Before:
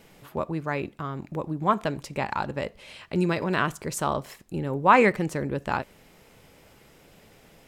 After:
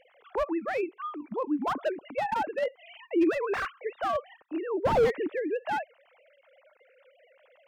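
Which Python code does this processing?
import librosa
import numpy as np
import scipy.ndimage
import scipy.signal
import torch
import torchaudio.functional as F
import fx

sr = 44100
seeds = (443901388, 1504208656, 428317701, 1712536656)

y = fx.sine_speech(x, sr)
y = fx.slew_limit(y, sr, full_power_hz=53.0)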